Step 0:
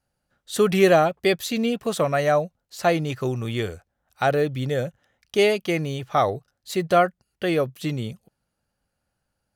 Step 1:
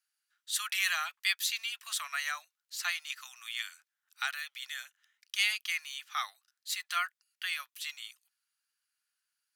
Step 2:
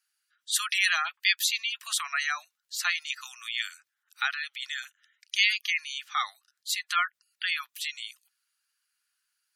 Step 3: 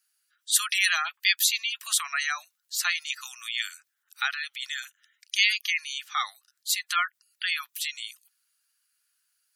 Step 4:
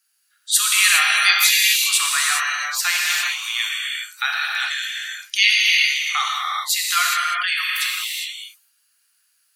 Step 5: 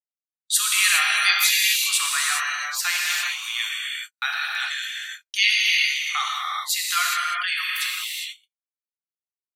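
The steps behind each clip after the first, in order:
Bessel high-pass 2.1 kHz, order 8
spectral gate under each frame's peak -20 dB strong; trim +6 dB
treble shelf 6.7 kHz +9 dB
gated-style reverb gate 440 ms flat, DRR -3.5 dB; trim +4.5 dB
gate -30 dBFS, range -50 dB; trim -3.5 dB

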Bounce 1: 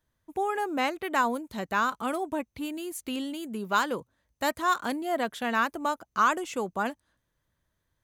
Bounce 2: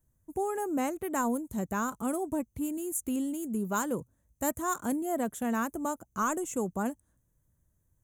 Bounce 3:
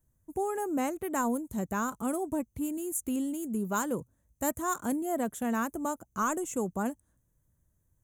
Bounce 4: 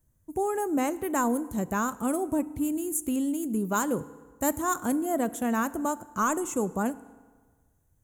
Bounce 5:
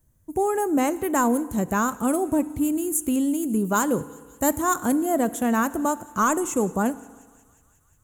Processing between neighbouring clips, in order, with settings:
FFT filter 130 Hz 0 dB, 4.7 kHz -24 dB, 6.8 kHz -1 dB; trim +7 dB
no audible change
FDN reverb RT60 1.5 s, low-frequency decay 0.9×, high-frequency decay 0.7×, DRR 16 dB; trim +3.5 dB
in parallel at -7.5 dB: hard clipper -19.5 dBFS, distortion -23 dB; on the sum: feedback echo behind a high-pass 179 ms, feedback 74%, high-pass 2.4 kHz, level -21.5 dB; trim +2 dB

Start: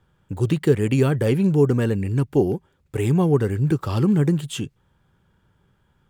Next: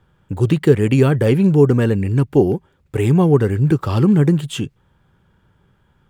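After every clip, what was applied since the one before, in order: tone controls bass 0 dB, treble -4 dB; trim +5 dB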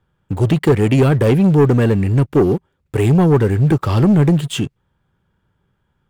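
waveshaping leveller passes 2; trim -4 dB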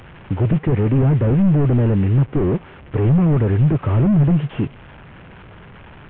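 one-bit delta coder 16 kbps, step -34.5 dBFS

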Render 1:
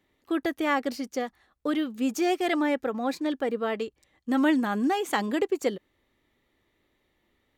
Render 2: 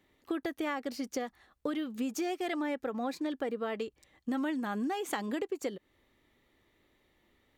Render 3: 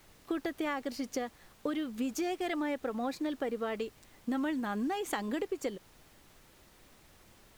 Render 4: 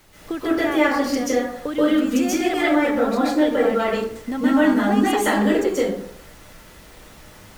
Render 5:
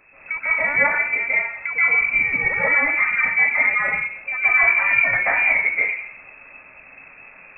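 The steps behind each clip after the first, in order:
compression, threshold -33 dBFS, peak gain reduction 13.5 dB; trim +1.5 dB
added noise pink -60 dBFS
plate-style reverb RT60 0.67 s, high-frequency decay 0.5×, pre-delay 120 ms, DRR -9.5 dB; trim +6 dB
block-companded coder 5-bit; frequency inversion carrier 2.6 kHz

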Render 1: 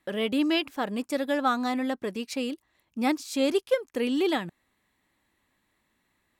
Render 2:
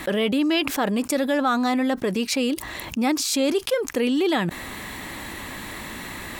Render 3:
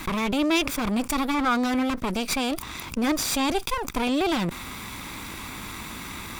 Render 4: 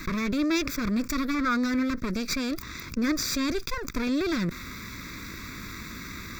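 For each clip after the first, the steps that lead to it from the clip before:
level flattener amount 70%
comb filter that takes the minimum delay 0.84 ms
static phaser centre 3 kHz, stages 6

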